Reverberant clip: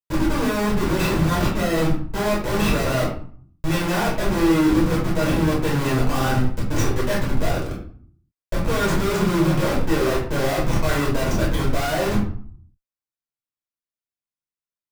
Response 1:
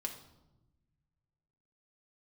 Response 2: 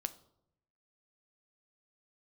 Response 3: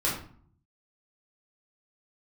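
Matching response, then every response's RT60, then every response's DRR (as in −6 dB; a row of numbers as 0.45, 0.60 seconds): 3; 1.0, 0.75, 0.50 seconds; 2.0, 11.0, −6.5 decibels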